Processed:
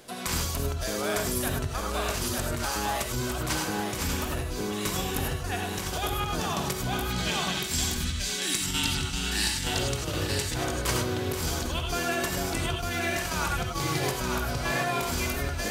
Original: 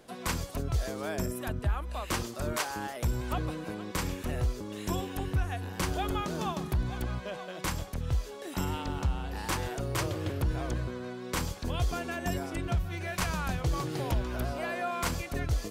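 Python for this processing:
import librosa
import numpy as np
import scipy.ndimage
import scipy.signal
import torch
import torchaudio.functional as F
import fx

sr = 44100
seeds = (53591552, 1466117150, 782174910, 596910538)

y = fx.graphic_eq(x, sr, hz=(250, 500, 1000, 2000, 4000, 8000), db=(8, -11, -6, 6, 7, 10), at=(7.05, 9.64))
y = y + 10.0 ** (-4.5 / 20.0) * np.pad(y, (int(903 * sr / 1000.0), 0))[:len(y)]
y = fx.over_compress(y, sr, threshold_db=-32.0, ratio=-0.5)
y = fx.high_shelf(y, sr, hz=2000.0, db=8.5)
y = fx.rev_gated(y, sr, seeds[0], gate_ms=120, shape='rising', drr_db=1.5)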